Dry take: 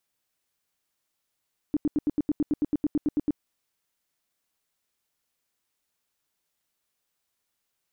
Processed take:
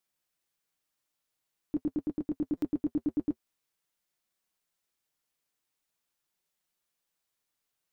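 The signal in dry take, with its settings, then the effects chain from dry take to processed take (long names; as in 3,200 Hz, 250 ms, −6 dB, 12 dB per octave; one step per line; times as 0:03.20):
tone bursts 297 Hz, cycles 8, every 0.11 s, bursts 15, −20 dBFS
flanger 0.46 Hz, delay 5.3 ms, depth 1.5 ms, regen −47%
buffer that repeats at 0:02.57, samples 256, times 8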